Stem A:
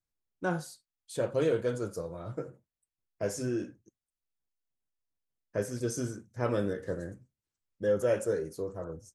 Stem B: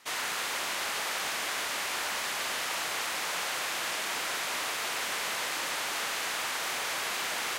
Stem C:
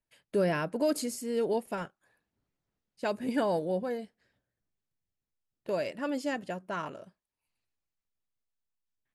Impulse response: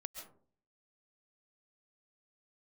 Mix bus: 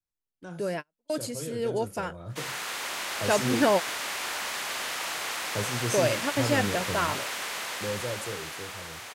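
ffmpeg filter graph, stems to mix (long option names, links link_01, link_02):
-filter_complex "[0:a]acrossover=split=180|3000[link_01][link_02][link_03];[link_02]acompressor=threshold=-55dB:ratio=1.5[link_04];[link_01][link_04][link_03]amix=inputs=3:normalize=0,volume=-4.5dB,asplit=2[link_05][link_06];[1:a]adelay=2300,volume=-10.5dB[link_07];[2:a]lowshelf=frequency=450:gain=-5.5,adelay=250,volume=-1.5dB[link_08];[link_06]apad=whole_len=414155[link_09];[link_08][link_09]sidechaingate=range=-46dB:threshold=-59dB:ratio=16:detection=peak[link_10];[link_05][link_07][link_10]amix=inputs=3:normalize=0,dynaudnorm=framelen=250:gausssize=17:maxgain=10.5dB"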